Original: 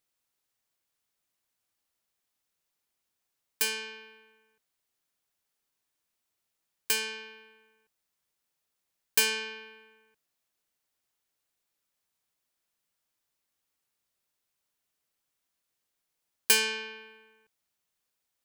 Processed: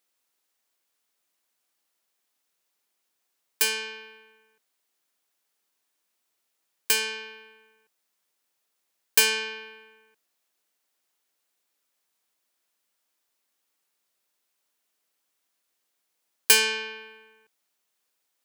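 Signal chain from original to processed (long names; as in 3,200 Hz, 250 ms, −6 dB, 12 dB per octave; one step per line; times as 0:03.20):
high-pass filter 240 Hz 12 dB per octave
level +5 dB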